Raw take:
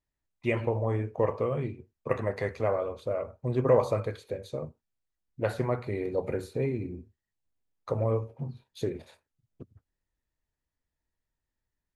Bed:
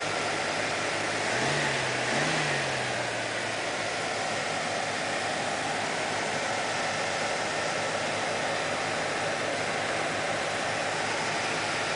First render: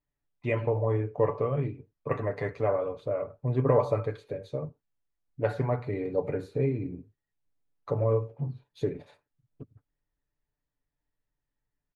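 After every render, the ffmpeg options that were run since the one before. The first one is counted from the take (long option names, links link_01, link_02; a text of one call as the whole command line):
ffmpeg -i in.wav -af "lowpass=frequency=2000:poles=1,aecho=1:1:6.9:0.57" out.wav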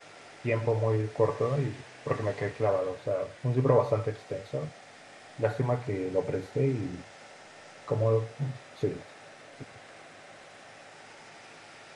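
ffmpeg -i in.wav -i bed.wav -filter_complex "[1:a]volume=-20.5dB[link_01];[0:a][link_01]amix=inputs=2:normalize=0" out.wav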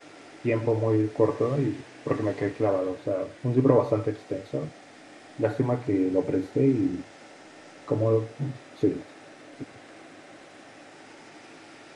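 ffmpeg -i in.wav -af "equalizer=frequency=300:width=2.4:gain=13.5" out.wav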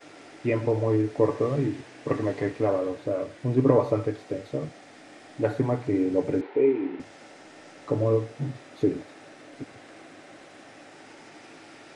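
ffmpeg -i in.wav -filter_complex "[0:a]asettb=1/sr,asplit=3[link_01][link_02][link_03];[link_01]atrim=end=6.414[link_04];[link_02]atrim=start=6.41:end=7,asetpts=PTS-STARTPTS,afade=type=in:duration=0.004:curve=qsin,afade=type=out:start_time=0.586:duration=0.004:curve=qsin,highpass=380,equalizer=frequency=400:width_type=q:width=4:gain=8,equalizer=frequency=640:width_type=q:width=4:gain=-4,equalizer=frequency=920:width_type=q:width=4:gain=10,equalizer=frequency=2300:width_type=q:width=4:gain=4,lowpass=frequency=3300:width=0.5412,lowpass=frequency=3300:width=1.3066[link_05];[link_03]atrim=start=6.996[link_06];[link_04][link_05]acrossfade=duration=0.004:curve1=hsin:curve2=qsin[link_07];[link_07][link_06]acrossfade=duration=0.004:curve1=qsin:curve2=hsin" out.wav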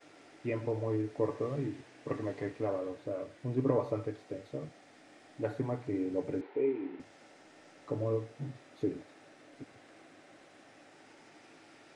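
ffmpeg -i in.wav -af "volume=-9.5dB" out.wav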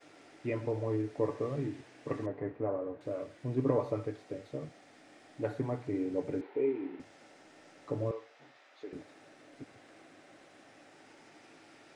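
ffmpeg -i in.wav -filter_complex "[0:a]asettb=1/sr,asplit=3[link_01][link_02][link_03];[link_01]atrim=end=2.264[link_04];[link_02]atrim=start=2.26:end=3.01,asetpts=PTS-STARTPTS,afade=type=in:duration=0.004:curve=qsin,afade=type=out:start_time=0.746:duration=0.004:curve=qsin,lowpass=1400[link_05];[link_03]atrim=start=3.006[link_06];[link_04][link_05]acrossfade=duration=0.004:curve1=hsin:curve2=qsin[link_07];[link_07][link_06]acrossfade=duration=0.004:curve1=qsin:curve2=hsin,asettb=1/sr,asplit=3[link_08][link_09][link_10];[link_08]atrim=end=8.114[link_11];[link_09]atrim=start=8.11:end=8.93,asetpts=PTS-STARTPTS,afade=type=in:duration=0.004:curve=qsin,afade=type=out:start_time=0.816:duration=0.004:curve=qsin,highpass=750,lowpass=5100[link_12];[link_10]atrim=start=8.926[link_13];[link_11][link_12]acrossfade=duration=0.004:curve1=hsin:curve2=qsin[link_14];[link_14][link_13]acrossfade=duration=0.004:curve1=qsin:curve2=hsin" out.wav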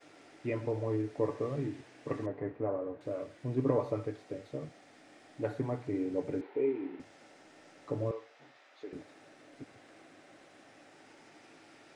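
ffmpeg -i in.wav -af anull out.wav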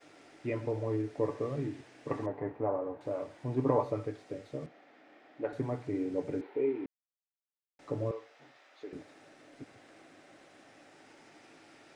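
ffmpeg -i in.wav -filter_complex "[0:a]asettb=1/sr,asplit=3[link_01][link_02][link_03];[link_01]atrim=end=2.114[link_04];[link_02]atrim=start=2.11:end=3.84,asetpts=PTS-STARTPTS,afade=type=in:duration=0.004:curve=qsin,afade=type=out:start_time=1.726:duration=0.004:curve=qsin,equalizer=frequency=870:width_type=o:width=0.56:gain=9.5[link_05];[link_03]atrim=start=3.836[link_06];[link_04][link_05]acrossfade=duration=0.004:curve1=hsin:curve2=qsin[link_07];[link_07][link_06]acrossfade=duration=0.004:curve1=qsin:curve2=hsin,asettb=1/sr,asplit=3[link_08][link_09][link_10];[link_08]atrim=end=4.664[link_11];[link_09]atrim=start=4.66:end=5.53,asetpts=PTS-STARTPTS,afade=type=in:duration=0.004:curve=qsin,afade=type=out:start_time=0.866:duration=0.004:curve=qsin,highpass=250,lowpass=2800[link_12];[link_10]atrim=start=5.526[link_13];[link_11][link_12]acrossfade=duration=0.004:curve1=hsin:curve2=qsin[link_14];[link_14][link_13]acrossfade=duration=0.004:curve1=qsin:curve2=hsin,asplit=3[link_15][link_16][link_17];[link_15]atrim=end=6.86,asetpts=PTS-STARTPTS,afade=type=out:start_time=6.856:duration=0.004:curve=hsin[link_18];[link_16]atrim=start=6.86:end=7.79,asetpts=PTS-STARTPTS,volume=0[link_19];[link_17]atrim=start=7.79,asetpts=PTS-STARTPTS,afade=type=in:duration=0.004:curve=hsin[link_20];[link_18][link_19][link_20]concat=n=3:v=0:a=1" out.wav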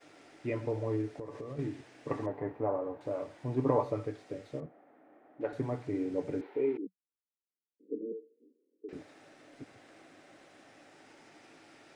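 ffmpeg -i in.wav -filter_complex "[0:a]asettb=1/sr,asplit=3[link_01][link_02][link_03];[link_01]atrim=end=1.114[link_04];[link_02]atrim=start=1.11:end=1.59,asetpts=PTS-STARTPTS,afade=type=in:duration=0.004:curve=qsin,afade=type=out:start_time=0.476:duration=0.004:curve=qsin,acompressor=threshold=-37dB:ratio=12:attack=3.2:release=140:knee=1:detection=peak[link_05];[link_03]atrim=start=1.586[link_06];[link_04][link_05]acrossfade=duration=0.004:curve1=hsin:curve2=qsin[link_07];[link_07][link_06]acrossfade=duration=0.004:curve1=qsin:curve2=hsin,asettb=1/sr,asplit=3[link_08][link_09][link_10];[link_08]atrim=end=4.604[link_11];[link_09]atrim=start=4.6:end=5.41,asetpts=PTS-STARTPTS,afade=type=in:duration=0.004:curve=qsin,afade=type=out:start_time=0.806:duration=0.004:curve=qsin,lowpass=1100[link_12];[link_10]atrim=start=5.406[link_13];[link_11][link_12]acrossfade=duration=0.004:curve1=hsin:curve2=qsin[link_14];[link_14][link_13]acrossfade=duration=0.004:curve1=qsin:curve2=hsin,asettb=1/sr,asplit=3[link_15][link_16][link_17];[link_15]atrim=end=6.774[link_18];[link_16]atrim=start=6.77:end=8.89,asetpts=PTS-STARTPTS,afade=type=in:duration=0.004:curve=qsin,afade=type=out:start_time=2.116:duration=0.004:curve=qsin,asuperpass=centerf=300:order=20:qfactor=1[link_19];[link_17]atrim=start=8.886[link_20];[link_18][link_19]acrossfade=duration=0.004:curve1=hsin:curve2=qsin[link_21];[link_21][link_20]acrossfade=duration=0.004:curve1=qsin:curve2=hsin" out.wav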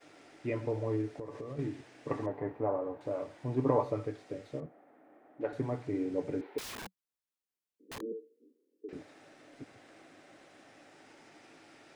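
ffmpeg -i in.wav -filter_complex "[0:a]asettb=1/sr,asplit=3[link_01][link_02][link_03];[link_01]atrim=end=6.584[link_04];[link_02]atrim=start=6.58:end=8.01,asetpts=PTS-STARTPTS,afade=type=in:duration=0.004:curve=qsin,afade=type=out:start_time=1.426:duration=0.004:curve=qsin,aeval=exprs='(mod(84.1*val(0)+1,2)-1)/84.1':channel_layout=same[link_05];[link_03]atrim=start=8.006[link_06];[link_04][link_05]acrossfade=duration=0.004:curve1=hsin:curve2=qsin[link_07];[link_07][link_06]acrossfade=duration=0.004:curve1=qsin:curve2=hsin" out.wav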